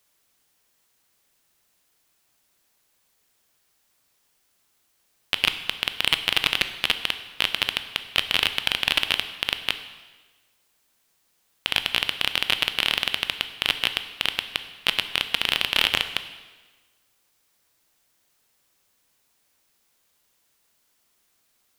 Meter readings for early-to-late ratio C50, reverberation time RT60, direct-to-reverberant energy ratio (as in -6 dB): 11.5 dB, 1.3 s, 9.5 dB